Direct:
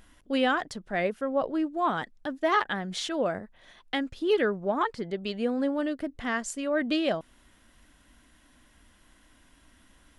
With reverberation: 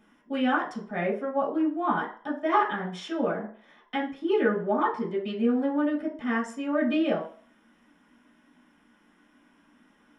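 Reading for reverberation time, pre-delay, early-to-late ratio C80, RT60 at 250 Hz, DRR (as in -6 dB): 0.45 s, 3 ms, 12.5 dB, 0.40 s, -8.0 dB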